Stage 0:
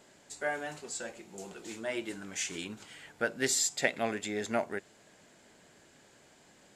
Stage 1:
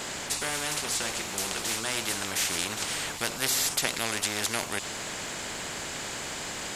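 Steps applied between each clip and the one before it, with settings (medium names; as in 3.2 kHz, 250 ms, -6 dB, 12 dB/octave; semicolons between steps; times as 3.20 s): spectrum-flattening compressor 4:1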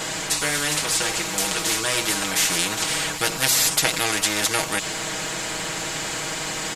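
comb 6.3 ms, depth 80%; trim +5.5 dB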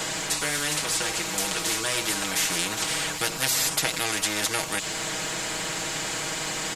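three bands compressed up and down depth 40%; trim -4 dB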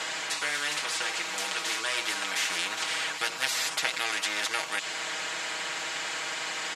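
band-pass filter 1.9 kHz, Q 0.58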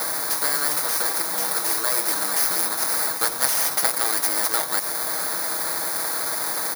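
bit-reversed sample order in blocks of 16 samples; trim +8 dB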